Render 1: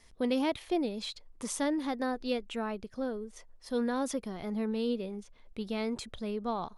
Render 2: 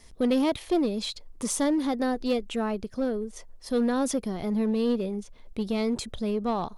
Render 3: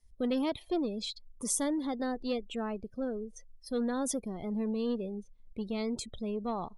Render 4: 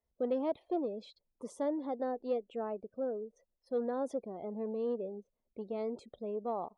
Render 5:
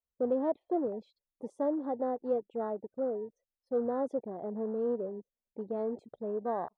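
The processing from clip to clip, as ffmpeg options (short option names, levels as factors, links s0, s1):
-filter_complex "[0:a]equalizer=f=1800:w=0.51:g=-5,asplit=2[s0][s1];[s1]aeval=exprs='0.0224*(abs(mod(val(0)/0.0224+3,4)-2)-1)':c=same,volume=0.282[s2];[s0][s2]amix=inputs=2:normalize=0,volume=2.11"
-af "afftdn=nr=21:nf=-42,highshelf=f=6400:g=10,volume=0.447"
-af "bandpass=f=580:t=q:w=1.5:csg=0,volume=1.33"
-af "afwtdn=0.00501,volume=1.41"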